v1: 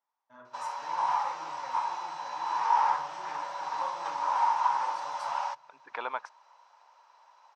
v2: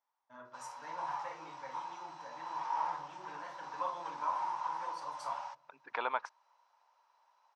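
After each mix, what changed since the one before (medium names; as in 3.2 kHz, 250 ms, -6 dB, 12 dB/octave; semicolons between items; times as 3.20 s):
background -11.5 dB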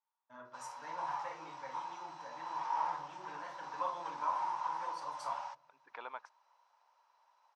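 second voice -11.0 dB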